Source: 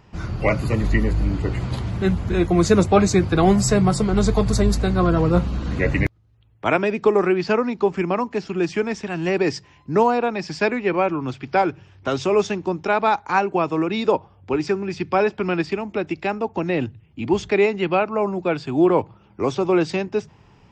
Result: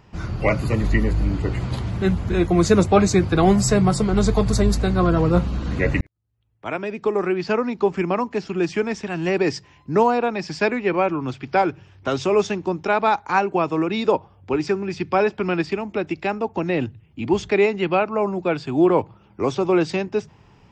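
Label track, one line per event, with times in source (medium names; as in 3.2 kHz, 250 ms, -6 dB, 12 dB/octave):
6.010000	7.870000	fade in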